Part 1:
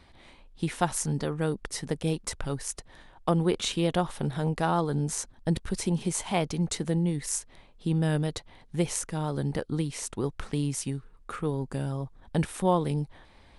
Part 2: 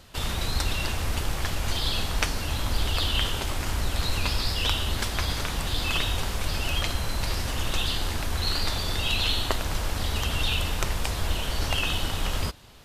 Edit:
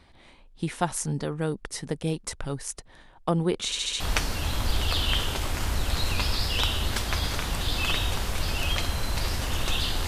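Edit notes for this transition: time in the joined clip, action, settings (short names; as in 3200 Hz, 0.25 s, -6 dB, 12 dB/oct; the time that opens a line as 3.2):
part 1
3.65 stutter in place 0.07 s, 5 plays
4 switch to part 2 from 2.06 s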